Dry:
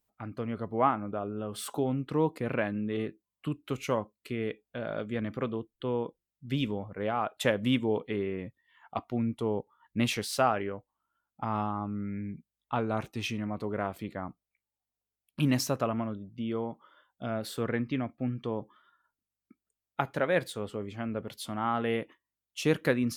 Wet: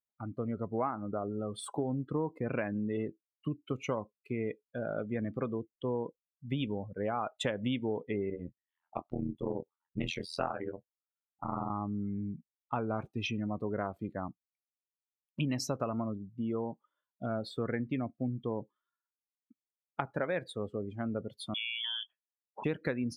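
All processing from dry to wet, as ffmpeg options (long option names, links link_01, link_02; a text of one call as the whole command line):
ffmpeg -i in.wav -filter_complex "[0:a]asettb=1/sr,asplit=3[link_01][link_02][link_03];[link_01]atrim=end=8.304[link_04];[link_02]atrim=start=8.3:end=11.7,asetpts=PTS-STARTPTS,afade=type=in:duration=0.004:curve=qsin,afade=type=out:start_time=3.396:duration=0.004:curve=qsin,tremolo=f=84:d=1,asplit=2[link_05][link_06];[link_06]adelay=23,volume=-8dB[link_07];[link_05][link_07]amix=inputs=2:normalize=0,atrim=end_sample=149940[link_08];[link_03]atrim=start=11.696[link_09];[link_04][link_08]acrossfade=duration=0.004:curve1=hsin:curve2=qsin[link_10];[link_10][link_09]acrossfade=duration=0.004:curve1=qsin:curve2=hsin,asettb=1/sr,asplit=3[link_11][link_12][link_13];[link_11]atrim=end=21.544[link_14];[link_12]atrim=start=21.54:end=22.64,asetpts=PTS-STARTPTS,afade=type=in:duration=0.004:curve=qsin,afade=type=out:start_time=1.096:duration=0.004:curve=qsin,acompressor=threshold=-31dB:ratio=16:attack=3.2:release=140:knee=1:detection=peak,lowpass=frequency=3100:width_type=q:width=0.5098,lowpass=frequency=3100:width_type=q:width=0.6013,lowpass=frequency=3100:width_type=q:width=0.9,lowpass=frequency=3100:width_type=q:width=2.563,afreqshift=-3600[link_15];[link_13]atrim=start=22.636[link_16];[link_14][link_15]acrossfade=duration=0.004:curve1=hsin:curve2=qsin[link_17];[link_17][link_16]acrossfade=duration=0.004:curve1=qsin:curve2=hsin,afftdn=noise_reduction=25:noise_floor=-39,acompressor=threshold=-29dB:ratio=6" out.wav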